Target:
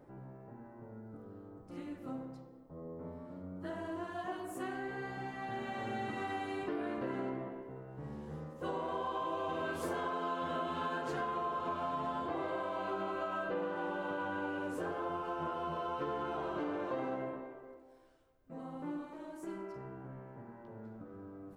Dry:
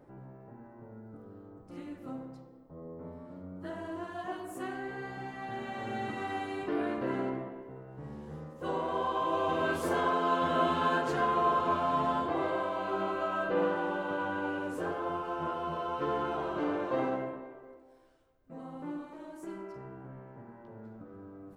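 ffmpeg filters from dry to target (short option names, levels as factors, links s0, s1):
-af "acompressor=threshold=0.0224:ratio=6,volume=0.891"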